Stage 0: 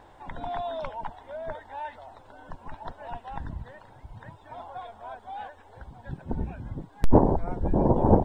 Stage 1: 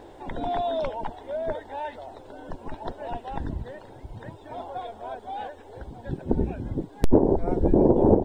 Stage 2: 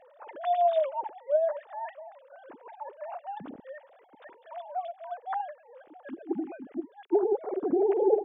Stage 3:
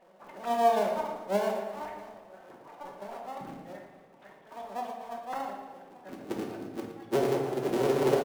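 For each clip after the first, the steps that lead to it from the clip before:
FFT filter 160 Hz 0 dB, 380 Hz +10 dB, 1.1 kHz -5 dB, 3.9 kHz +2 dB; compression 4:1, threshold -19 dBFS, peak gain reduction 11.5 dB; trim +4 dB
formants replaced by sine waves; trim -5.5 dB
cycle switcher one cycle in 3, muted; on a send: feedback delay 115 ms, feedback 56%, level -12 dB; on the sum: simulated room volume 340 m³, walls mixed, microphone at 1.1 m; trim -3.5 dB

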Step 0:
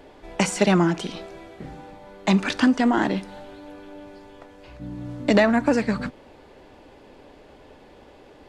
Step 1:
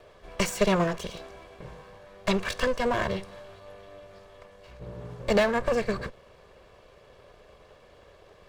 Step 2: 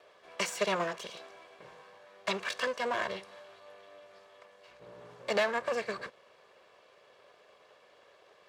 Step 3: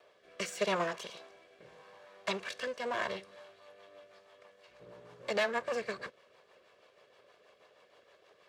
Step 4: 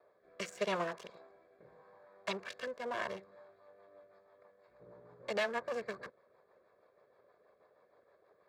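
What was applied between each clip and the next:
comb filter that takes the minimum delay 1.8 ms; trim -3.5 dB
frequency weighting A; trim -4 dB
rotary cabinet horn 0.85 Hz, later 6.3 Hz, at 2.88 s
local Wiener filter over 15 samples; trim -3 dB

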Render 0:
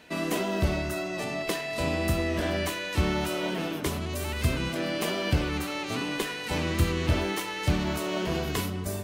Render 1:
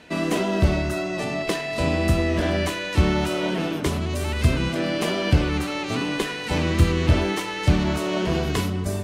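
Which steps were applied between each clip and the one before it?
Bessel low-pass 9.2 kHz, order 2; bass shelf 380 Hz +3.5 dB; trim +4 dB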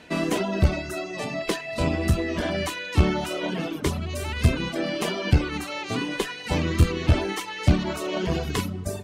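reverb removal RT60 1.5 s; Chebyshev shaper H 2 -13 dB, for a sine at -6 dBFS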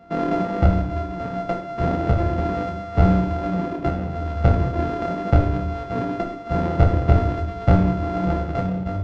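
sorted samples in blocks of 64 samples; tape spacing loss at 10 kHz 42 dB; simulated room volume 170 m³, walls mixed, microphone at 0.73 m; trim +2 dB

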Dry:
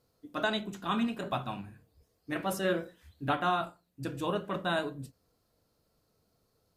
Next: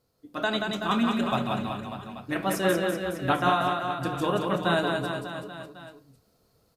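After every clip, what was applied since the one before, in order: level rider gain up to 5 dB; on a send: reverse bouncing-ball echo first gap 180 ms, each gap 1.1×, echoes 5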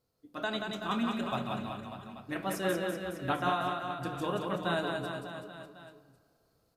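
reverberation RT60 2.3 s, pre-delay 75 ms, DRR 17 dB; trim -7 dB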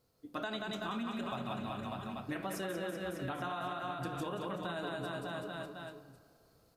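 peak limiter -25 dBFS, peak gain reduction 7.5 dB; compression, threshold -41 dBFS, peak gain reduction 11 dB; trim +5 dB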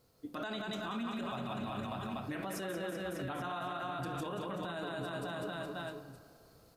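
peak limiter -36.5 dBFS, peak gain reduction 10.5 dB; trim +5.5 dB

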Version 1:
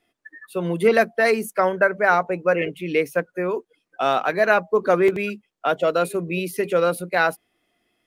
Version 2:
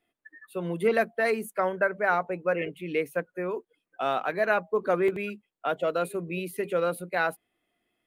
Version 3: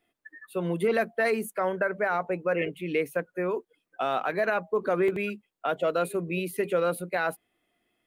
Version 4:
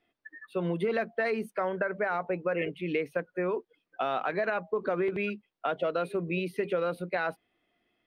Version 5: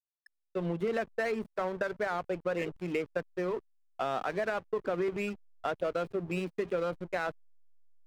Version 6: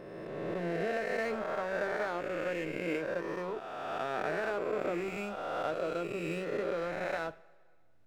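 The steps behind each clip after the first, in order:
peaking EQ 5.5 kHz -9 dB 0.54 oct; trim -7 dB
peak limiter -19 dBFS, peak gain reduction 8 dB; trim +2.5 dB
compression, threshold -25 dBFS, peak gain reduction 5 dB; Savitzky-Golay filter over 15 samples
hysteresis with a dead band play -33.5 dBFS; trim -2 dB
reverse spectral sustain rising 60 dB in 2.39 s; two-slope reverb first 0.33 s, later 1.9 s, from -18 dB, DRR 11.5 dB; trim -6 dB

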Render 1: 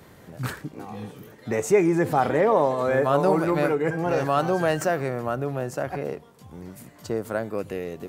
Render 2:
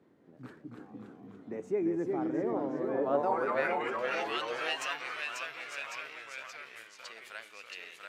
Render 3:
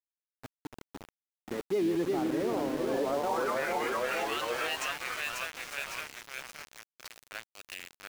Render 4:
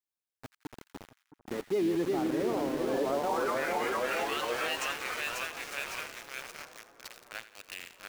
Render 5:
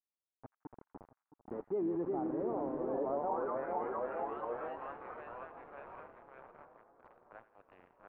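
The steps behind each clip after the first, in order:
band-pass sweep 290 Hz -> 2.9 kHz, 2.85–3.86 s; ever faster or slower copies 255 ms, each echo -1 st, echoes 3; tilt shelf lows -7.5 dB; trim -2 dB
peak limiter -25.5 dBFS, peak gain reduction 10 dB; small samples zeroed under -40 dBFS; trim +3.5 dB
two-band feedback delay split 1.4 kHz, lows 667 ms, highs 85 ms, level -14 dB
four-pole ladder low-pass 1.2 kHz, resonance 30%

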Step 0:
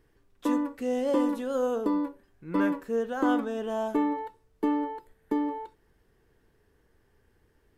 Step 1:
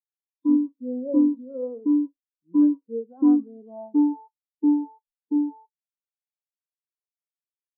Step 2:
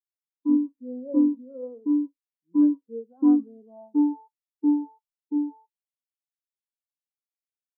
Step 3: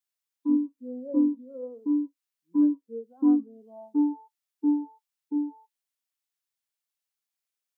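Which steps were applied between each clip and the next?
ten-band graphic EQ 250 Hz +7 dB, 1 kHz +7 dB, 2 kHz -10 dB, 4 kHz +12 dB; spectral contrast expander 2.5:1
three bands expanded up and down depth 40%; trim -2.5 dB
tape noise reduction on one side only encoder only; trim -2.5 dB

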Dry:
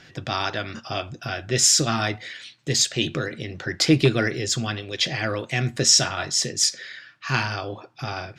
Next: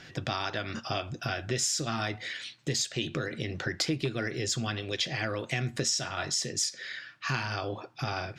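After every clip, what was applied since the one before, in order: compression 5:1, threshold -28 dBFS, peak gain reduction 14.5 dB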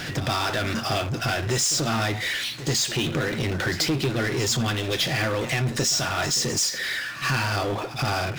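power-law waveshaper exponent 0.5; pre-echo 83 ms -13 dB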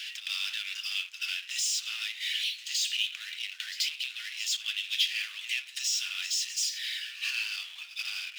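ladder high-pass 2.5 kHz, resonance 60%; trim +2.5 dB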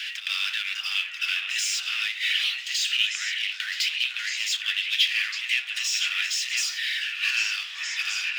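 peaking EQ 1.6 kHz +11.5 dB 1.9 oct; repeats whose band climbs or falls 508 ms, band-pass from 820 Hz, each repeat 1.4 oct, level -1 dB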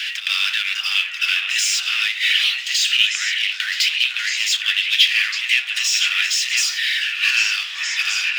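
crackle 20 per s -56 dBFS; trim +7.5 dB

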